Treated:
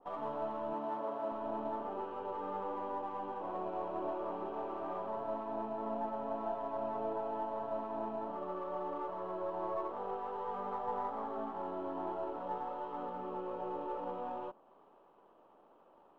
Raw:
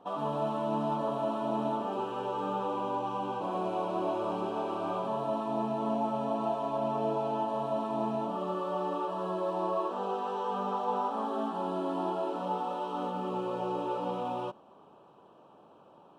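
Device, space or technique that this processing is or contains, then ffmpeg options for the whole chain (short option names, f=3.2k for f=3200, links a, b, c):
crystal radio: -filter_complex "[0:a]highpass=270,lowpass=2.5k,aeval=exprs='if(lt(val(0),0),0.708*val(0),val(0))':c=same,asettb=1/sr,asplit=3[a][b][c];[a]atrim=end=0.734[d];[b]atrim=start=0.73:end=1.32,asetpts=PTS-STARTPTS,afade=t=in:d=0.004:c=qsin,afade=t=out:st=0.586:d=0.004:c=qsin,highpass=200[e];[c]atrim=start=1.316[f];[d][e]acrossfade=d=0.004:c1=hsin:c2=qsin[g];[g][f]acrossfade=d=0.004:c1=qsin:c2=hsin,adynamicequalizer=threshold=0.00316:dfrequency=1700:dqfactor=0.7:tfrequency=1700:tqfactor=0.7:attack=5:release=100:ratio=0.375:range=2.5:mode=cutabove:tftype=highshelf,volume=-4.5dB"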